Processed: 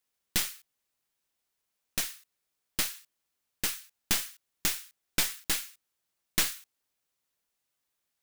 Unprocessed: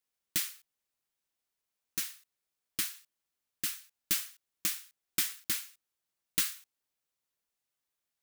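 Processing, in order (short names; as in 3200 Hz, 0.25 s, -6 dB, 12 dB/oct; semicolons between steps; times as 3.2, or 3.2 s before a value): tracing distortion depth 0.064 ms; gain +4.5 dB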